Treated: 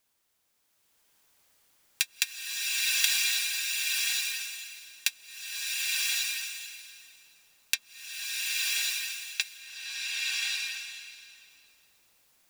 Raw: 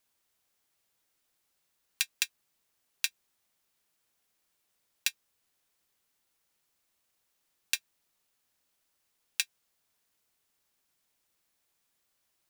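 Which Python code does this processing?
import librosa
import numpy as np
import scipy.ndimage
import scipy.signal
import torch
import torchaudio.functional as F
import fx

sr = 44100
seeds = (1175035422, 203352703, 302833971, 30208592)

y = fx.lowpass(x, sr, hz=5400.0, slope=12, at=(7.74, 9.41))
y = fx.rev_bloom(y, sr, seeds[0], attack_ms=1100, drr_db=-8.0)
y = F.gain(torch.from_numpy(y), 2.5).numpy()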